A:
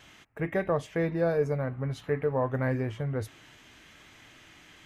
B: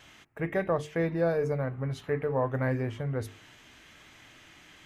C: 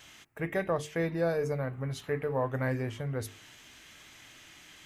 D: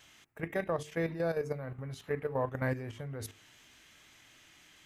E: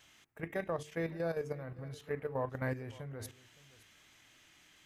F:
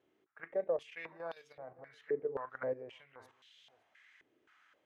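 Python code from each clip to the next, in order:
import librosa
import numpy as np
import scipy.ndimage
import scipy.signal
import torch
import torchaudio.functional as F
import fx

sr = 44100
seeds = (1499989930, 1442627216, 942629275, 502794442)

y1 = fx.hum_notches(x, sr, base_hz=50, count=9)
y2 = fx.high_shelf(y1, sr, hz=3500.0, db=10.0)
y2 = F.gain(torch.from_numpy(y2), -2.5).numpy()
y3 = fx.level_steps(y2, sr, step_db=10)
y4 = y3 + 10.0 ** (-20.5 / 20.0) * np.pad(y3, (int(566 * sr / 1000.0), 0))[:len(y3)]
y4 = F.gain(torch.from_numpy(y4), -3.5).numpy()
y5 = fx.filter_held_bandpass(y4, sr, hz=3.8, low_hz=390.0, high_hz=3500.0)
y5 = F.gain(torch.from_numpy(y5), 6.5).numpy()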